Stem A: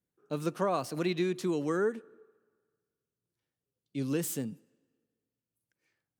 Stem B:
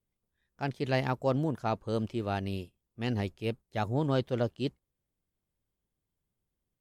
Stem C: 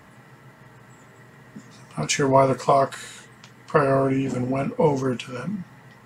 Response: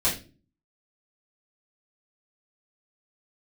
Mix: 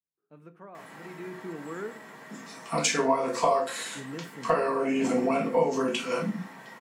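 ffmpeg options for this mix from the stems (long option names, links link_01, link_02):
-filter_complex "[0:a]highshelf=frequency=3100:width_type=q:width=1.5:gain=-13.5,volume=-9dB,afade=type=in:start_time=1.02:duration=0.37:silence=0.316228,asplit=2[link_01][link_02];[link_02]volume=-20.5dB[link_03];[2:a]highpass=340,acompressor=threshold=-27dB:ratio=5,adelay=750,volume=-0.5dB,asplit=2[link_04][link_05];[link_05]volume=-8.5dB[link_06];[3:a]atrim=start_sample=2205[link_07];[link_03][link_06]amix=inputs=2:normalize=0[link_08];[link_08][link_07]afir=irnorm=-1:irlink=0[link_09];[link_01][link_04][link_09]amix=inputs=3:normalize=0"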